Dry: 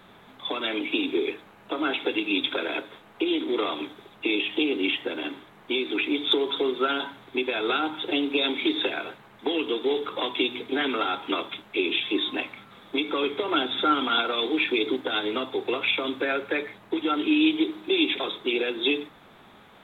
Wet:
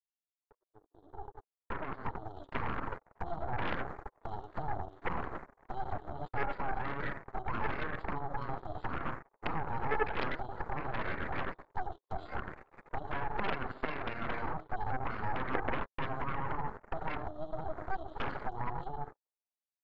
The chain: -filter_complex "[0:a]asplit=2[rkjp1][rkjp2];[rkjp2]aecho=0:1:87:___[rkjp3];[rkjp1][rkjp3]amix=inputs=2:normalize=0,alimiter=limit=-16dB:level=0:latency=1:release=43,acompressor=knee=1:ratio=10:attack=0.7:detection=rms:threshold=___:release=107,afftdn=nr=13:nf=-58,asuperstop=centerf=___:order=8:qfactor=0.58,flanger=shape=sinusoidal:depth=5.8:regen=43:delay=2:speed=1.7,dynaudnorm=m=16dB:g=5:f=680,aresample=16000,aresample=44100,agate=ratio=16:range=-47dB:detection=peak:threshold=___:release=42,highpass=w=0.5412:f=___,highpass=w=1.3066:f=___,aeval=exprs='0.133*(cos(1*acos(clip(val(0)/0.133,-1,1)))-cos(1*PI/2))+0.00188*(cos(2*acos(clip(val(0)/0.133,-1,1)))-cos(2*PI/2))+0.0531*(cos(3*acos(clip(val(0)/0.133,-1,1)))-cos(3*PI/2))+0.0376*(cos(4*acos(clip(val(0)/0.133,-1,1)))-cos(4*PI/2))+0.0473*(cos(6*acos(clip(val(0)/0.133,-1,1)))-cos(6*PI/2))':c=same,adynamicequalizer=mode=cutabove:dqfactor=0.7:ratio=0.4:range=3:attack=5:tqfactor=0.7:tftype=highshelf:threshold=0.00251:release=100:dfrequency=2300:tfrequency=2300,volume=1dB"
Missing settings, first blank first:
0.224, -33dB, 2500, -42dB, 420, 420